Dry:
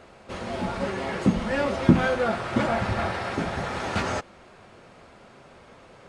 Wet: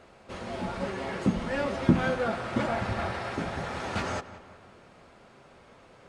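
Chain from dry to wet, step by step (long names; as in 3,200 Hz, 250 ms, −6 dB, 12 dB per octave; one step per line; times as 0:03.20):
feedback echo with a low-pass in the loop 182 ms, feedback 51%, low-pass 3,400 Hz, level −15 dB
level −4.5 dB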